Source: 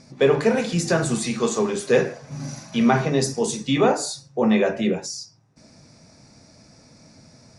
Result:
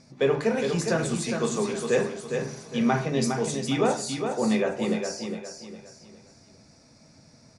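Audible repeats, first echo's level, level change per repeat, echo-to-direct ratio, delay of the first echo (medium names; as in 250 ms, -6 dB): 4, -6.0 dB, -9.0 dB, -5.5 dB, 409 ms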